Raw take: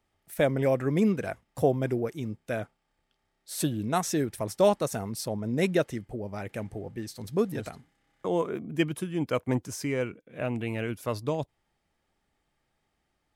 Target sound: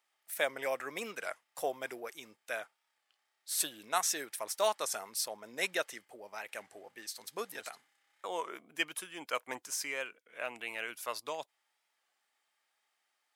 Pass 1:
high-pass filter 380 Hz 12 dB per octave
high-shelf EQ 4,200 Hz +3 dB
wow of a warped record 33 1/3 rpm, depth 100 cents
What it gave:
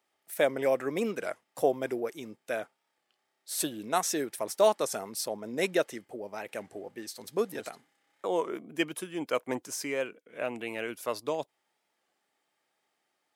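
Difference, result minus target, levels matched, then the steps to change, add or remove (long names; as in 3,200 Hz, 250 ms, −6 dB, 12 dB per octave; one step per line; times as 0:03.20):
500 Hz band +4.5 dB
change: high-pass filter 960 Hz 12 dB per octave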